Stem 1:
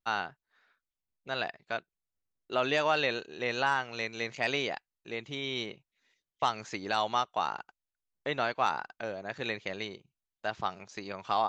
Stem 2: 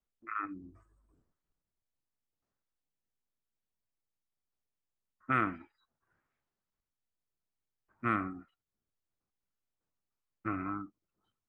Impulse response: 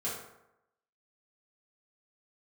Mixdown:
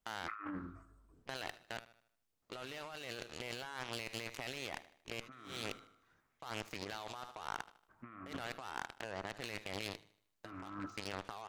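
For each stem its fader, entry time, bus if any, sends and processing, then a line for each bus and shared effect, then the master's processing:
+0.5 dB, 0.00 s, no send, echo send -21.5 dB, peak limiter -26.5 dBFS, peak gain reduction 11.5 dB; Chebyshev shaper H 3 -20 dB, 7 -18 dB, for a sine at -26.5 dBFS
-1.5 dB, 0.00 s, send -16.5 dB, no echo send, none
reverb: on, RT60 0.85 s, pre-delay 3 ms
echo: feedback delay 77 ms, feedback 43%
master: compressor with a negative ratio -45 dBFS, ratio -1; hard clipper -27.5 dBFS, distortion -17 dB; loudspeaker Doppler distortion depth 0.31 ms

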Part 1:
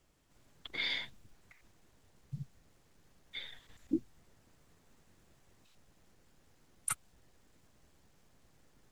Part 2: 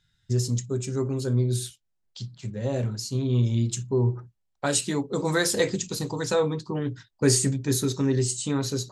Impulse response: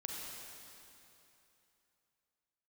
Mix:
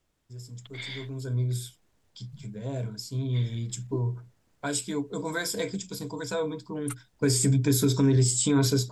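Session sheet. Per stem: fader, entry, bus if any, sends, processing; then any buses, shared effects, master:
-3.5 dB, 0.00 s, no send, none
0.93 s -22 dB -> 1.34 s -13 dB -> 7.00 s -13 dB -> 7.69 s -0.5 dB, 0.00 s, no send, level rider gain up to 6 dB; rippled EQ curve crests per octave 1.7, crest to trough 11 dB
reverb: none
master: peak limiter -15 dBFS, peak gain reduction 7.5 dB

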